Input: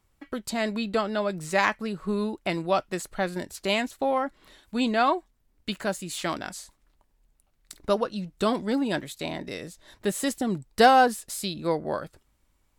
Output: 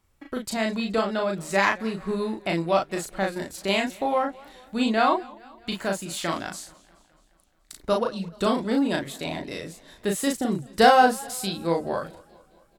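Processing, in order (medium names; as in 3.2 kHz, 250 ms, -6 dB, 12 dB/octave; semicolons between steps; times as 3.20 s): doubling 36 ms -3 dB; modulated delay 213 ms, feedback 59%, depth 137 cents, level -23.5 dB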